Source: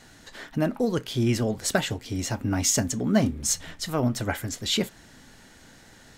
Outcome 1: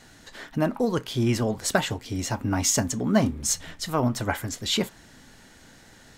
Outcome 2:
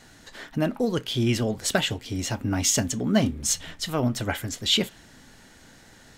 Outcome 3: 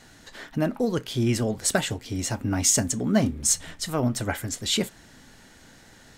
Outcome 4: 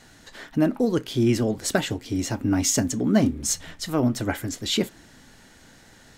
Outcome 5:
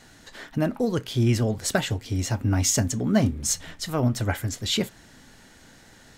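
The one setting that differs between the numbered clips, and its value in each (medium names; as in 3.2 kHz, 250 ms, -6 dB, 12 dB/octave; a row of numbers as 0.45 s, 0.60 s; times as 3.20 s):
dynamic bell, frequency: 1 kHz, 3.1 kHz, 8.7 kHz, 310 Hz, 100 Hz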